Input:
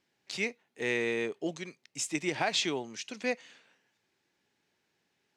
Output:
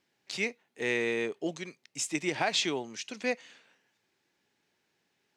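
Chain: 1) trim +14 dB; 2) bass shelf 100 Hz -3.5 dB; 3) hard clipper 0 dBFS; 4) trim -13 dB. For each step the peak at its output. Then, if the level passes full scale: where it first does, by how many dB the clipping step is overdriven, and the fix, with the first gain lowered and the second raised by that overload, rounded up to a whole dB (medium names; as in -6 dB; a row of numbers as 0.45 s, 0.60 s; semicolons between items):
-2.5 dBFS, -2.5 dBFS, -2.5 dBFS, -15.5 dBFS; nothing clips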